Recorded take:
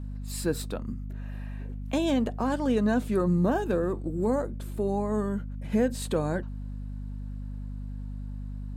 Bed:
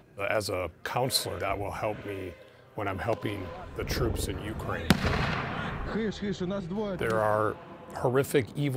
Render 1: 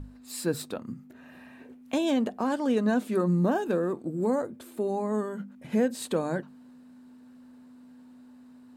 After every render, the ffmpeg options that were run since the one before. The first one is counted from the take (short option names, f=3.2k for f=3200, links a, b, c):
-af "bandreject=f=50:t=h:w=6,bandreject=f=100:t=h:w=6,bandreject=f=150:t=h:w=6,bandreject=f=200:t=h:w=6"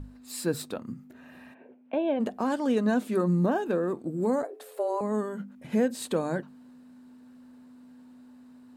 -filter_complex "[0:a]asplit=3[a][b][c];[a]afade=t=out:st=1.53:d=0.02[d];[b]highpass=f=150:w=0.5412,highpass=f=150:w=1.3066,equalizer=f=150:t=q:w=4:g=-9,equalizer=f=260:t=q:w=4:g=-7,equalizer=f=610:t=q:w=4:g=5,equalizer=f=1.2k:t=q:w=4:g=-9,equalizer=f=1.9k:t=q:w=4:g=-8,lowpass=f=2.4k:w=0.5412,lowpass=f=2.4k:w=1.3066,afade=t=in:st=1.53:d=0.02,afade=t=out:st=2.19:d=0.02[e];[c]afade=t=in:st=2.19:d=0.02[f];[d][e][f]amix=inputs=3:normalize=0,asettb=1/sr,asplit=3[g][h][i];[g]atrim=end=3.464[j];[h]atrim=start=3.46:end=3.88,asetpts=PTS-STARTPTS,afade=t=in:d=0.004:c=qsin,afade=t=out:st=0.416:d=0.004:c=qsin,bass=f=250:g=-2,treble=f=4k:g=-5[k];[i]atrim=start=3.876[l];[j][k]acrossfade=d=0.004:c1=hsin:c2=qsin[m];[m][l]acrossfade=d=0.004:c1=qsin:c2=hsin,asettb=1/sr,asplit=3[n][o][p];[n]atrim=end=4.434[q];[o]atrim=start=4.43:end=5.01,asetpts=PTS-STARTPTS,afade=t=in:d=0.004:c=qsin,afade=t=out:st=0.576:d=0.004:c=qsin,afreqshift=180[r];[p]atrim=start=5.006[s];[q][r]acrossfade=d=0.004:c1=hsin:c2=qsin[t];[t][s]acrossfade=d=0.004:c1=qsin:c2=hsin"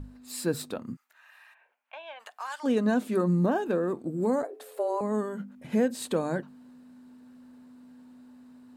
-filter_complex "[0:a]asplit=3[a][b][c];[a]afade=t=out:st=0.95:d=0.02[d];[b]highpass=f=990:w=0.5412,highpass=f=990:w=1.3066,afade=t=in:st=0.95:d=0.02,afade=t=out:st=2.63:d=0.02[e];[c]afade=t=in:st=2.63:d=0.02[f];[d][e][f]amix=inputs=3:normalize=0"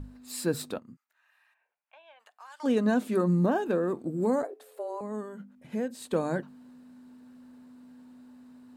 -filter_complex "[0:a]asplit=5[a][b][c][d][e];[a]atrim=end=0.792[f];[b]atrim=start=0.788:end=2.602,asetpts=PTS-STARTPTS,volume=-12dB[g];[c]atrim=start=2.598:end=4.542[h];[d]atrim=start=4.538:end=6.132,asetpts=PTS-STARTPTS,volume=-7dB[i];[e]atrim=start=6.128[j];[f][g]acrossfade=d=0.004:c1=hsin:c2=hsin[k];[k][h]acrossfade=d=0.004:c1=hsin:c2=hsin[l];[l][i]acrossfade=d=0.004:c1=hsin:c2=hsin[m];[m][j]acrossfade=d=0.004:c1=hsin:c2=hsin"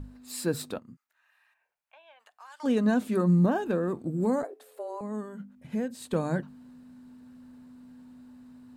-af "asubboost=boost=2.5:cutoff=200"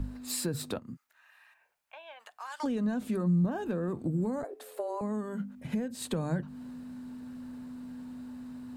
-filter_complex "[0:a]asplit=2[a][b];[b]alimiter=limit=-22.5dB:level=0:latency=1,volume=2dB[c];[a][c]amix=inputs=2:normalize=0,acrossover=split=130[d][e];[e]acompressor=threshold=-31dB:ratio=10[f];[d][f]amix=inputs=2:normalize=0"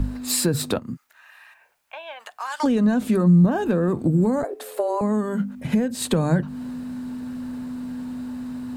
-af "volume=11.5dB"